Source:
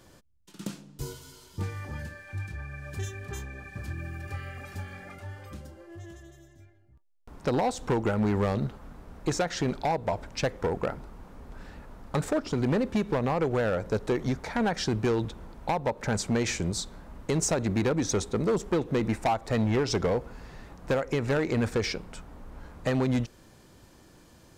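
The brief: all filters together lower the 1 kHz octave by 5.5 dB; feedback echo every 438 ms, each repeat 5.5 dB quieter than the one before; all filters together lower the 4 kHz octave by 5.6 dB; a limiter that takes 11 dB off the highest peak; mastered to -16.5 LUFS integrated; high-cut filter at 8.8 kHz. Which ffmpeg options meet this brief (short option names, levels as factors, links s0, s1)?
-af "lowpass=8800,equalizer=f=1000:t=o:g=-7.5,equalizer=f=4000:t=o:g=-7,alimiter=level_in=2.24:limit=0.0631:level=0:latency=1,volume=0.447,aecho=1:1:438|876|1314|1752|2190|2628|3066:0.531|0.281|0.149|0.079|0.0419|0.0222|0.0118,volume=13.3"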